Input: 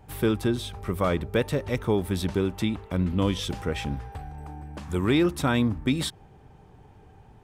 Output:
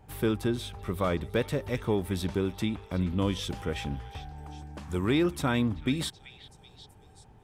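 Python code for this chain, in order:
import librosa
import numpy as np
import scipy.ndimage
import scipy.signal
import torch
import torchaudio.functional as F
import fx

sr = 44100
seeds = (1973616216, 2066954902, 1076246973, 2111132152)

y = fx.echo_stepped(x, sr, ms=381, hz=2600.0, octaves=0.7, feedback_pct=70, wet_db=-12.0)
y = y * 10.0 ** (-3.5 / 20.0)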